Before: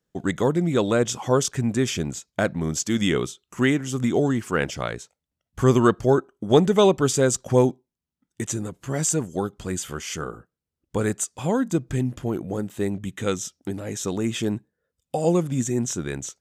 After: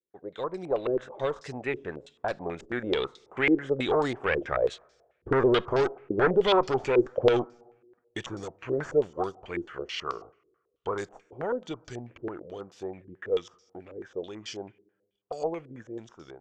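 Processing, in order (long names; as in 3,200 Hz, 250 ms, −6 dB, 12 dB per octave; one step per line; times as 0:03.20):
source passing by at 0:05.87, 21 m/s, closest 21 metres
automatic gain control gain up to 7.5 dB
low shelf with overshoot 320 Hz −8.5 dB, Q 1.5
tube saturation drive 16 dB, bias 0.45
brickwall limiter −19 dBFS, peak gain reduction 5 dB
on a send at −23.5 dB: convolution reverb RT60 1.3 s, pre-delay 4 ms
on the sum: low-pass on a step sequencer 9.2 Hz 360–5,000 Hz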